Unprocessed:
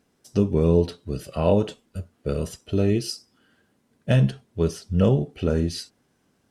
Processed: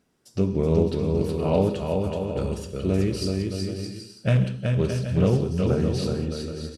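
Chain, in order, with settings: bouncing-ball echo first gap 360 ms, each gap 0.65×, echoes 5; gated-style reverb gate 200 ms flat, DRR 9 dB; speed mistake 25 fps video run at 24 fps; loudspeaker Doppler distortion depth 0.21 ms; trim -2.5 dB

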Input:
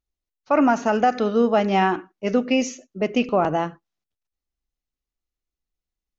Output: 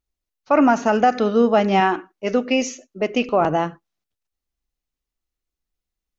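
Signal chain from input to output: 1.80–3.41 s: peaking EQ 140 Hz -8 dB 1.4 oct; trim +2.5 dB

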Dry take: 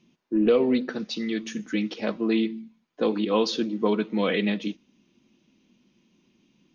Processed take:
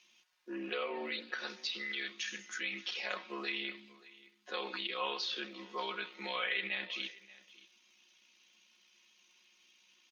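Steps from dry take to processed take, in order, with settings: Bessel high-pass 1.8 kHz, order 2; low-pass that closes with the level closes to 2.8 kHz, closed at -33.5 dBFS; in parallel at -1.5 dB: compressor with a negative ratio -47 dBFS, ratio -1; on the sum: crackle 100 per s -65 dBFS; granular stretch 1.5×, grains 33 ms; delay 580 ms -20.5 dB

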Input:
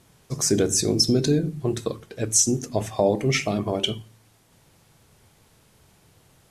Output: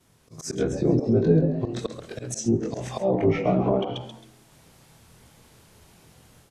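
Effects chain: short-time spectra conjugated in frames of 51 ms; slow attack 202 ms; level rider gain up to 8 dB; frequency-shifting echo 134 ms, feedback 30%, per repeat +99 Hz, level -10.5 dB; low-pass that closes with the level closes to 1.1 kHz, closed at -15.5 dBFS; trim -1.5 dB

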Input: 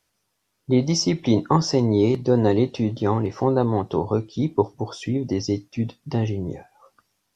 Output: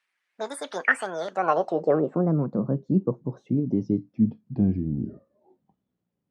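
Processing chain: gliding tape speed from 180% -> 53%; band-pass sweep 2 kHz -> 200 Hz, 1.25–2.28 s; trim +6 dB

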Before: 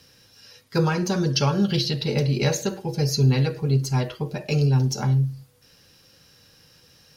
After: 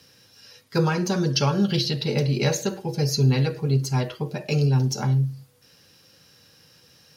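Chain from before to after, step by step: high-pass 89 Hz

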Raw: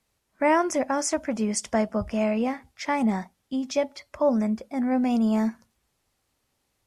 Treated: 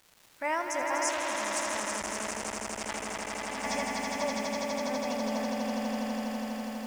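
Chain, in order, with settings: peaking EQ 250 Hz -14 dB 2.7 oct; crackle 540 per s -41 dBFS; echo with a slow build-up 82 ms, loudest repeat 8, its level -4.5 dB; 1.09–3.64 s: transformer saturation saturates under 3 kHz; trim -4.5 dB

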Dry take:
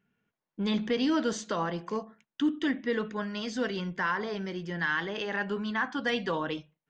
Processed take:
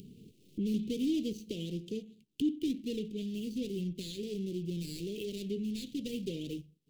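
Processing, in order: median filter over 25 samples; dynamic bell 330 Hz, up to -4 dB, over -42 dBFS, Q 0.73; upward compressor, threshold -31 dBFS; elliptic band-stop 400–2900 Hz, stop band 50 dB; trim +1 dB

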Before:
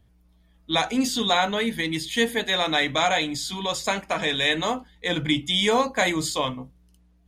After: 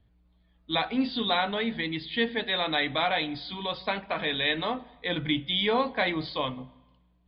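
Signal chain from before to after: steep low-pass 4.6 kHz 96 dB/octave; on a send: reverberation RT60 1.1 s, pre-delay 3 ms, DRR 19.5 dB; on the sum: trim -4.5 dB

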